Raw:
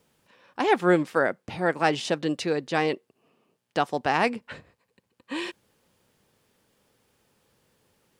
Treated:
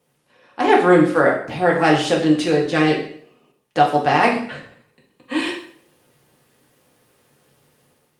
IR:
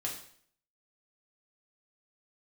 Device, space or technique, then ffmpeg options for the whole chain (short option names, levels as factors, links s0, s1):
far-field microphone of a smart speaker: -filter_complex "[0:a]asettb=1/sr,asplit=3[s0][s1][s2];[s0]atrim=end=2.724[s3];[s1]atrim=start=2.72:end=3.92,asetpts=PTS-STARTPTS,afade=t=in:d=0.004:c=qsin,afade=t=out:st=1.196:d=0.004:c=qsin,adynamicequalizer=threshold=0.01:dfrequency=970:dqfactor=2.1:tfrequency=970:tqfactor=2.1:attack=5:release=100:ratio=0.375:range=3:mode=cutabove:tftype=bell[s4];[s2]atrim=start=3.916[s5];[s3][s4]acrossfade=d=0.004:c1=hsin:c2=qsin[s6];[s6][s5]acrossfade=d=0.004:c1=qsin:c2=hsin[s7];[1:a]atrim=start_sample=2205[s8];[s7][s8]afir=irnorm=-1:irlink=0,highpass=f=100:w=0.5412,highpass=f=100:w=1.3066,dynaudnorm=f=130:g=7:m=2.37,volume=1.12" -ar 48000 -c:a libopus -b:a 32k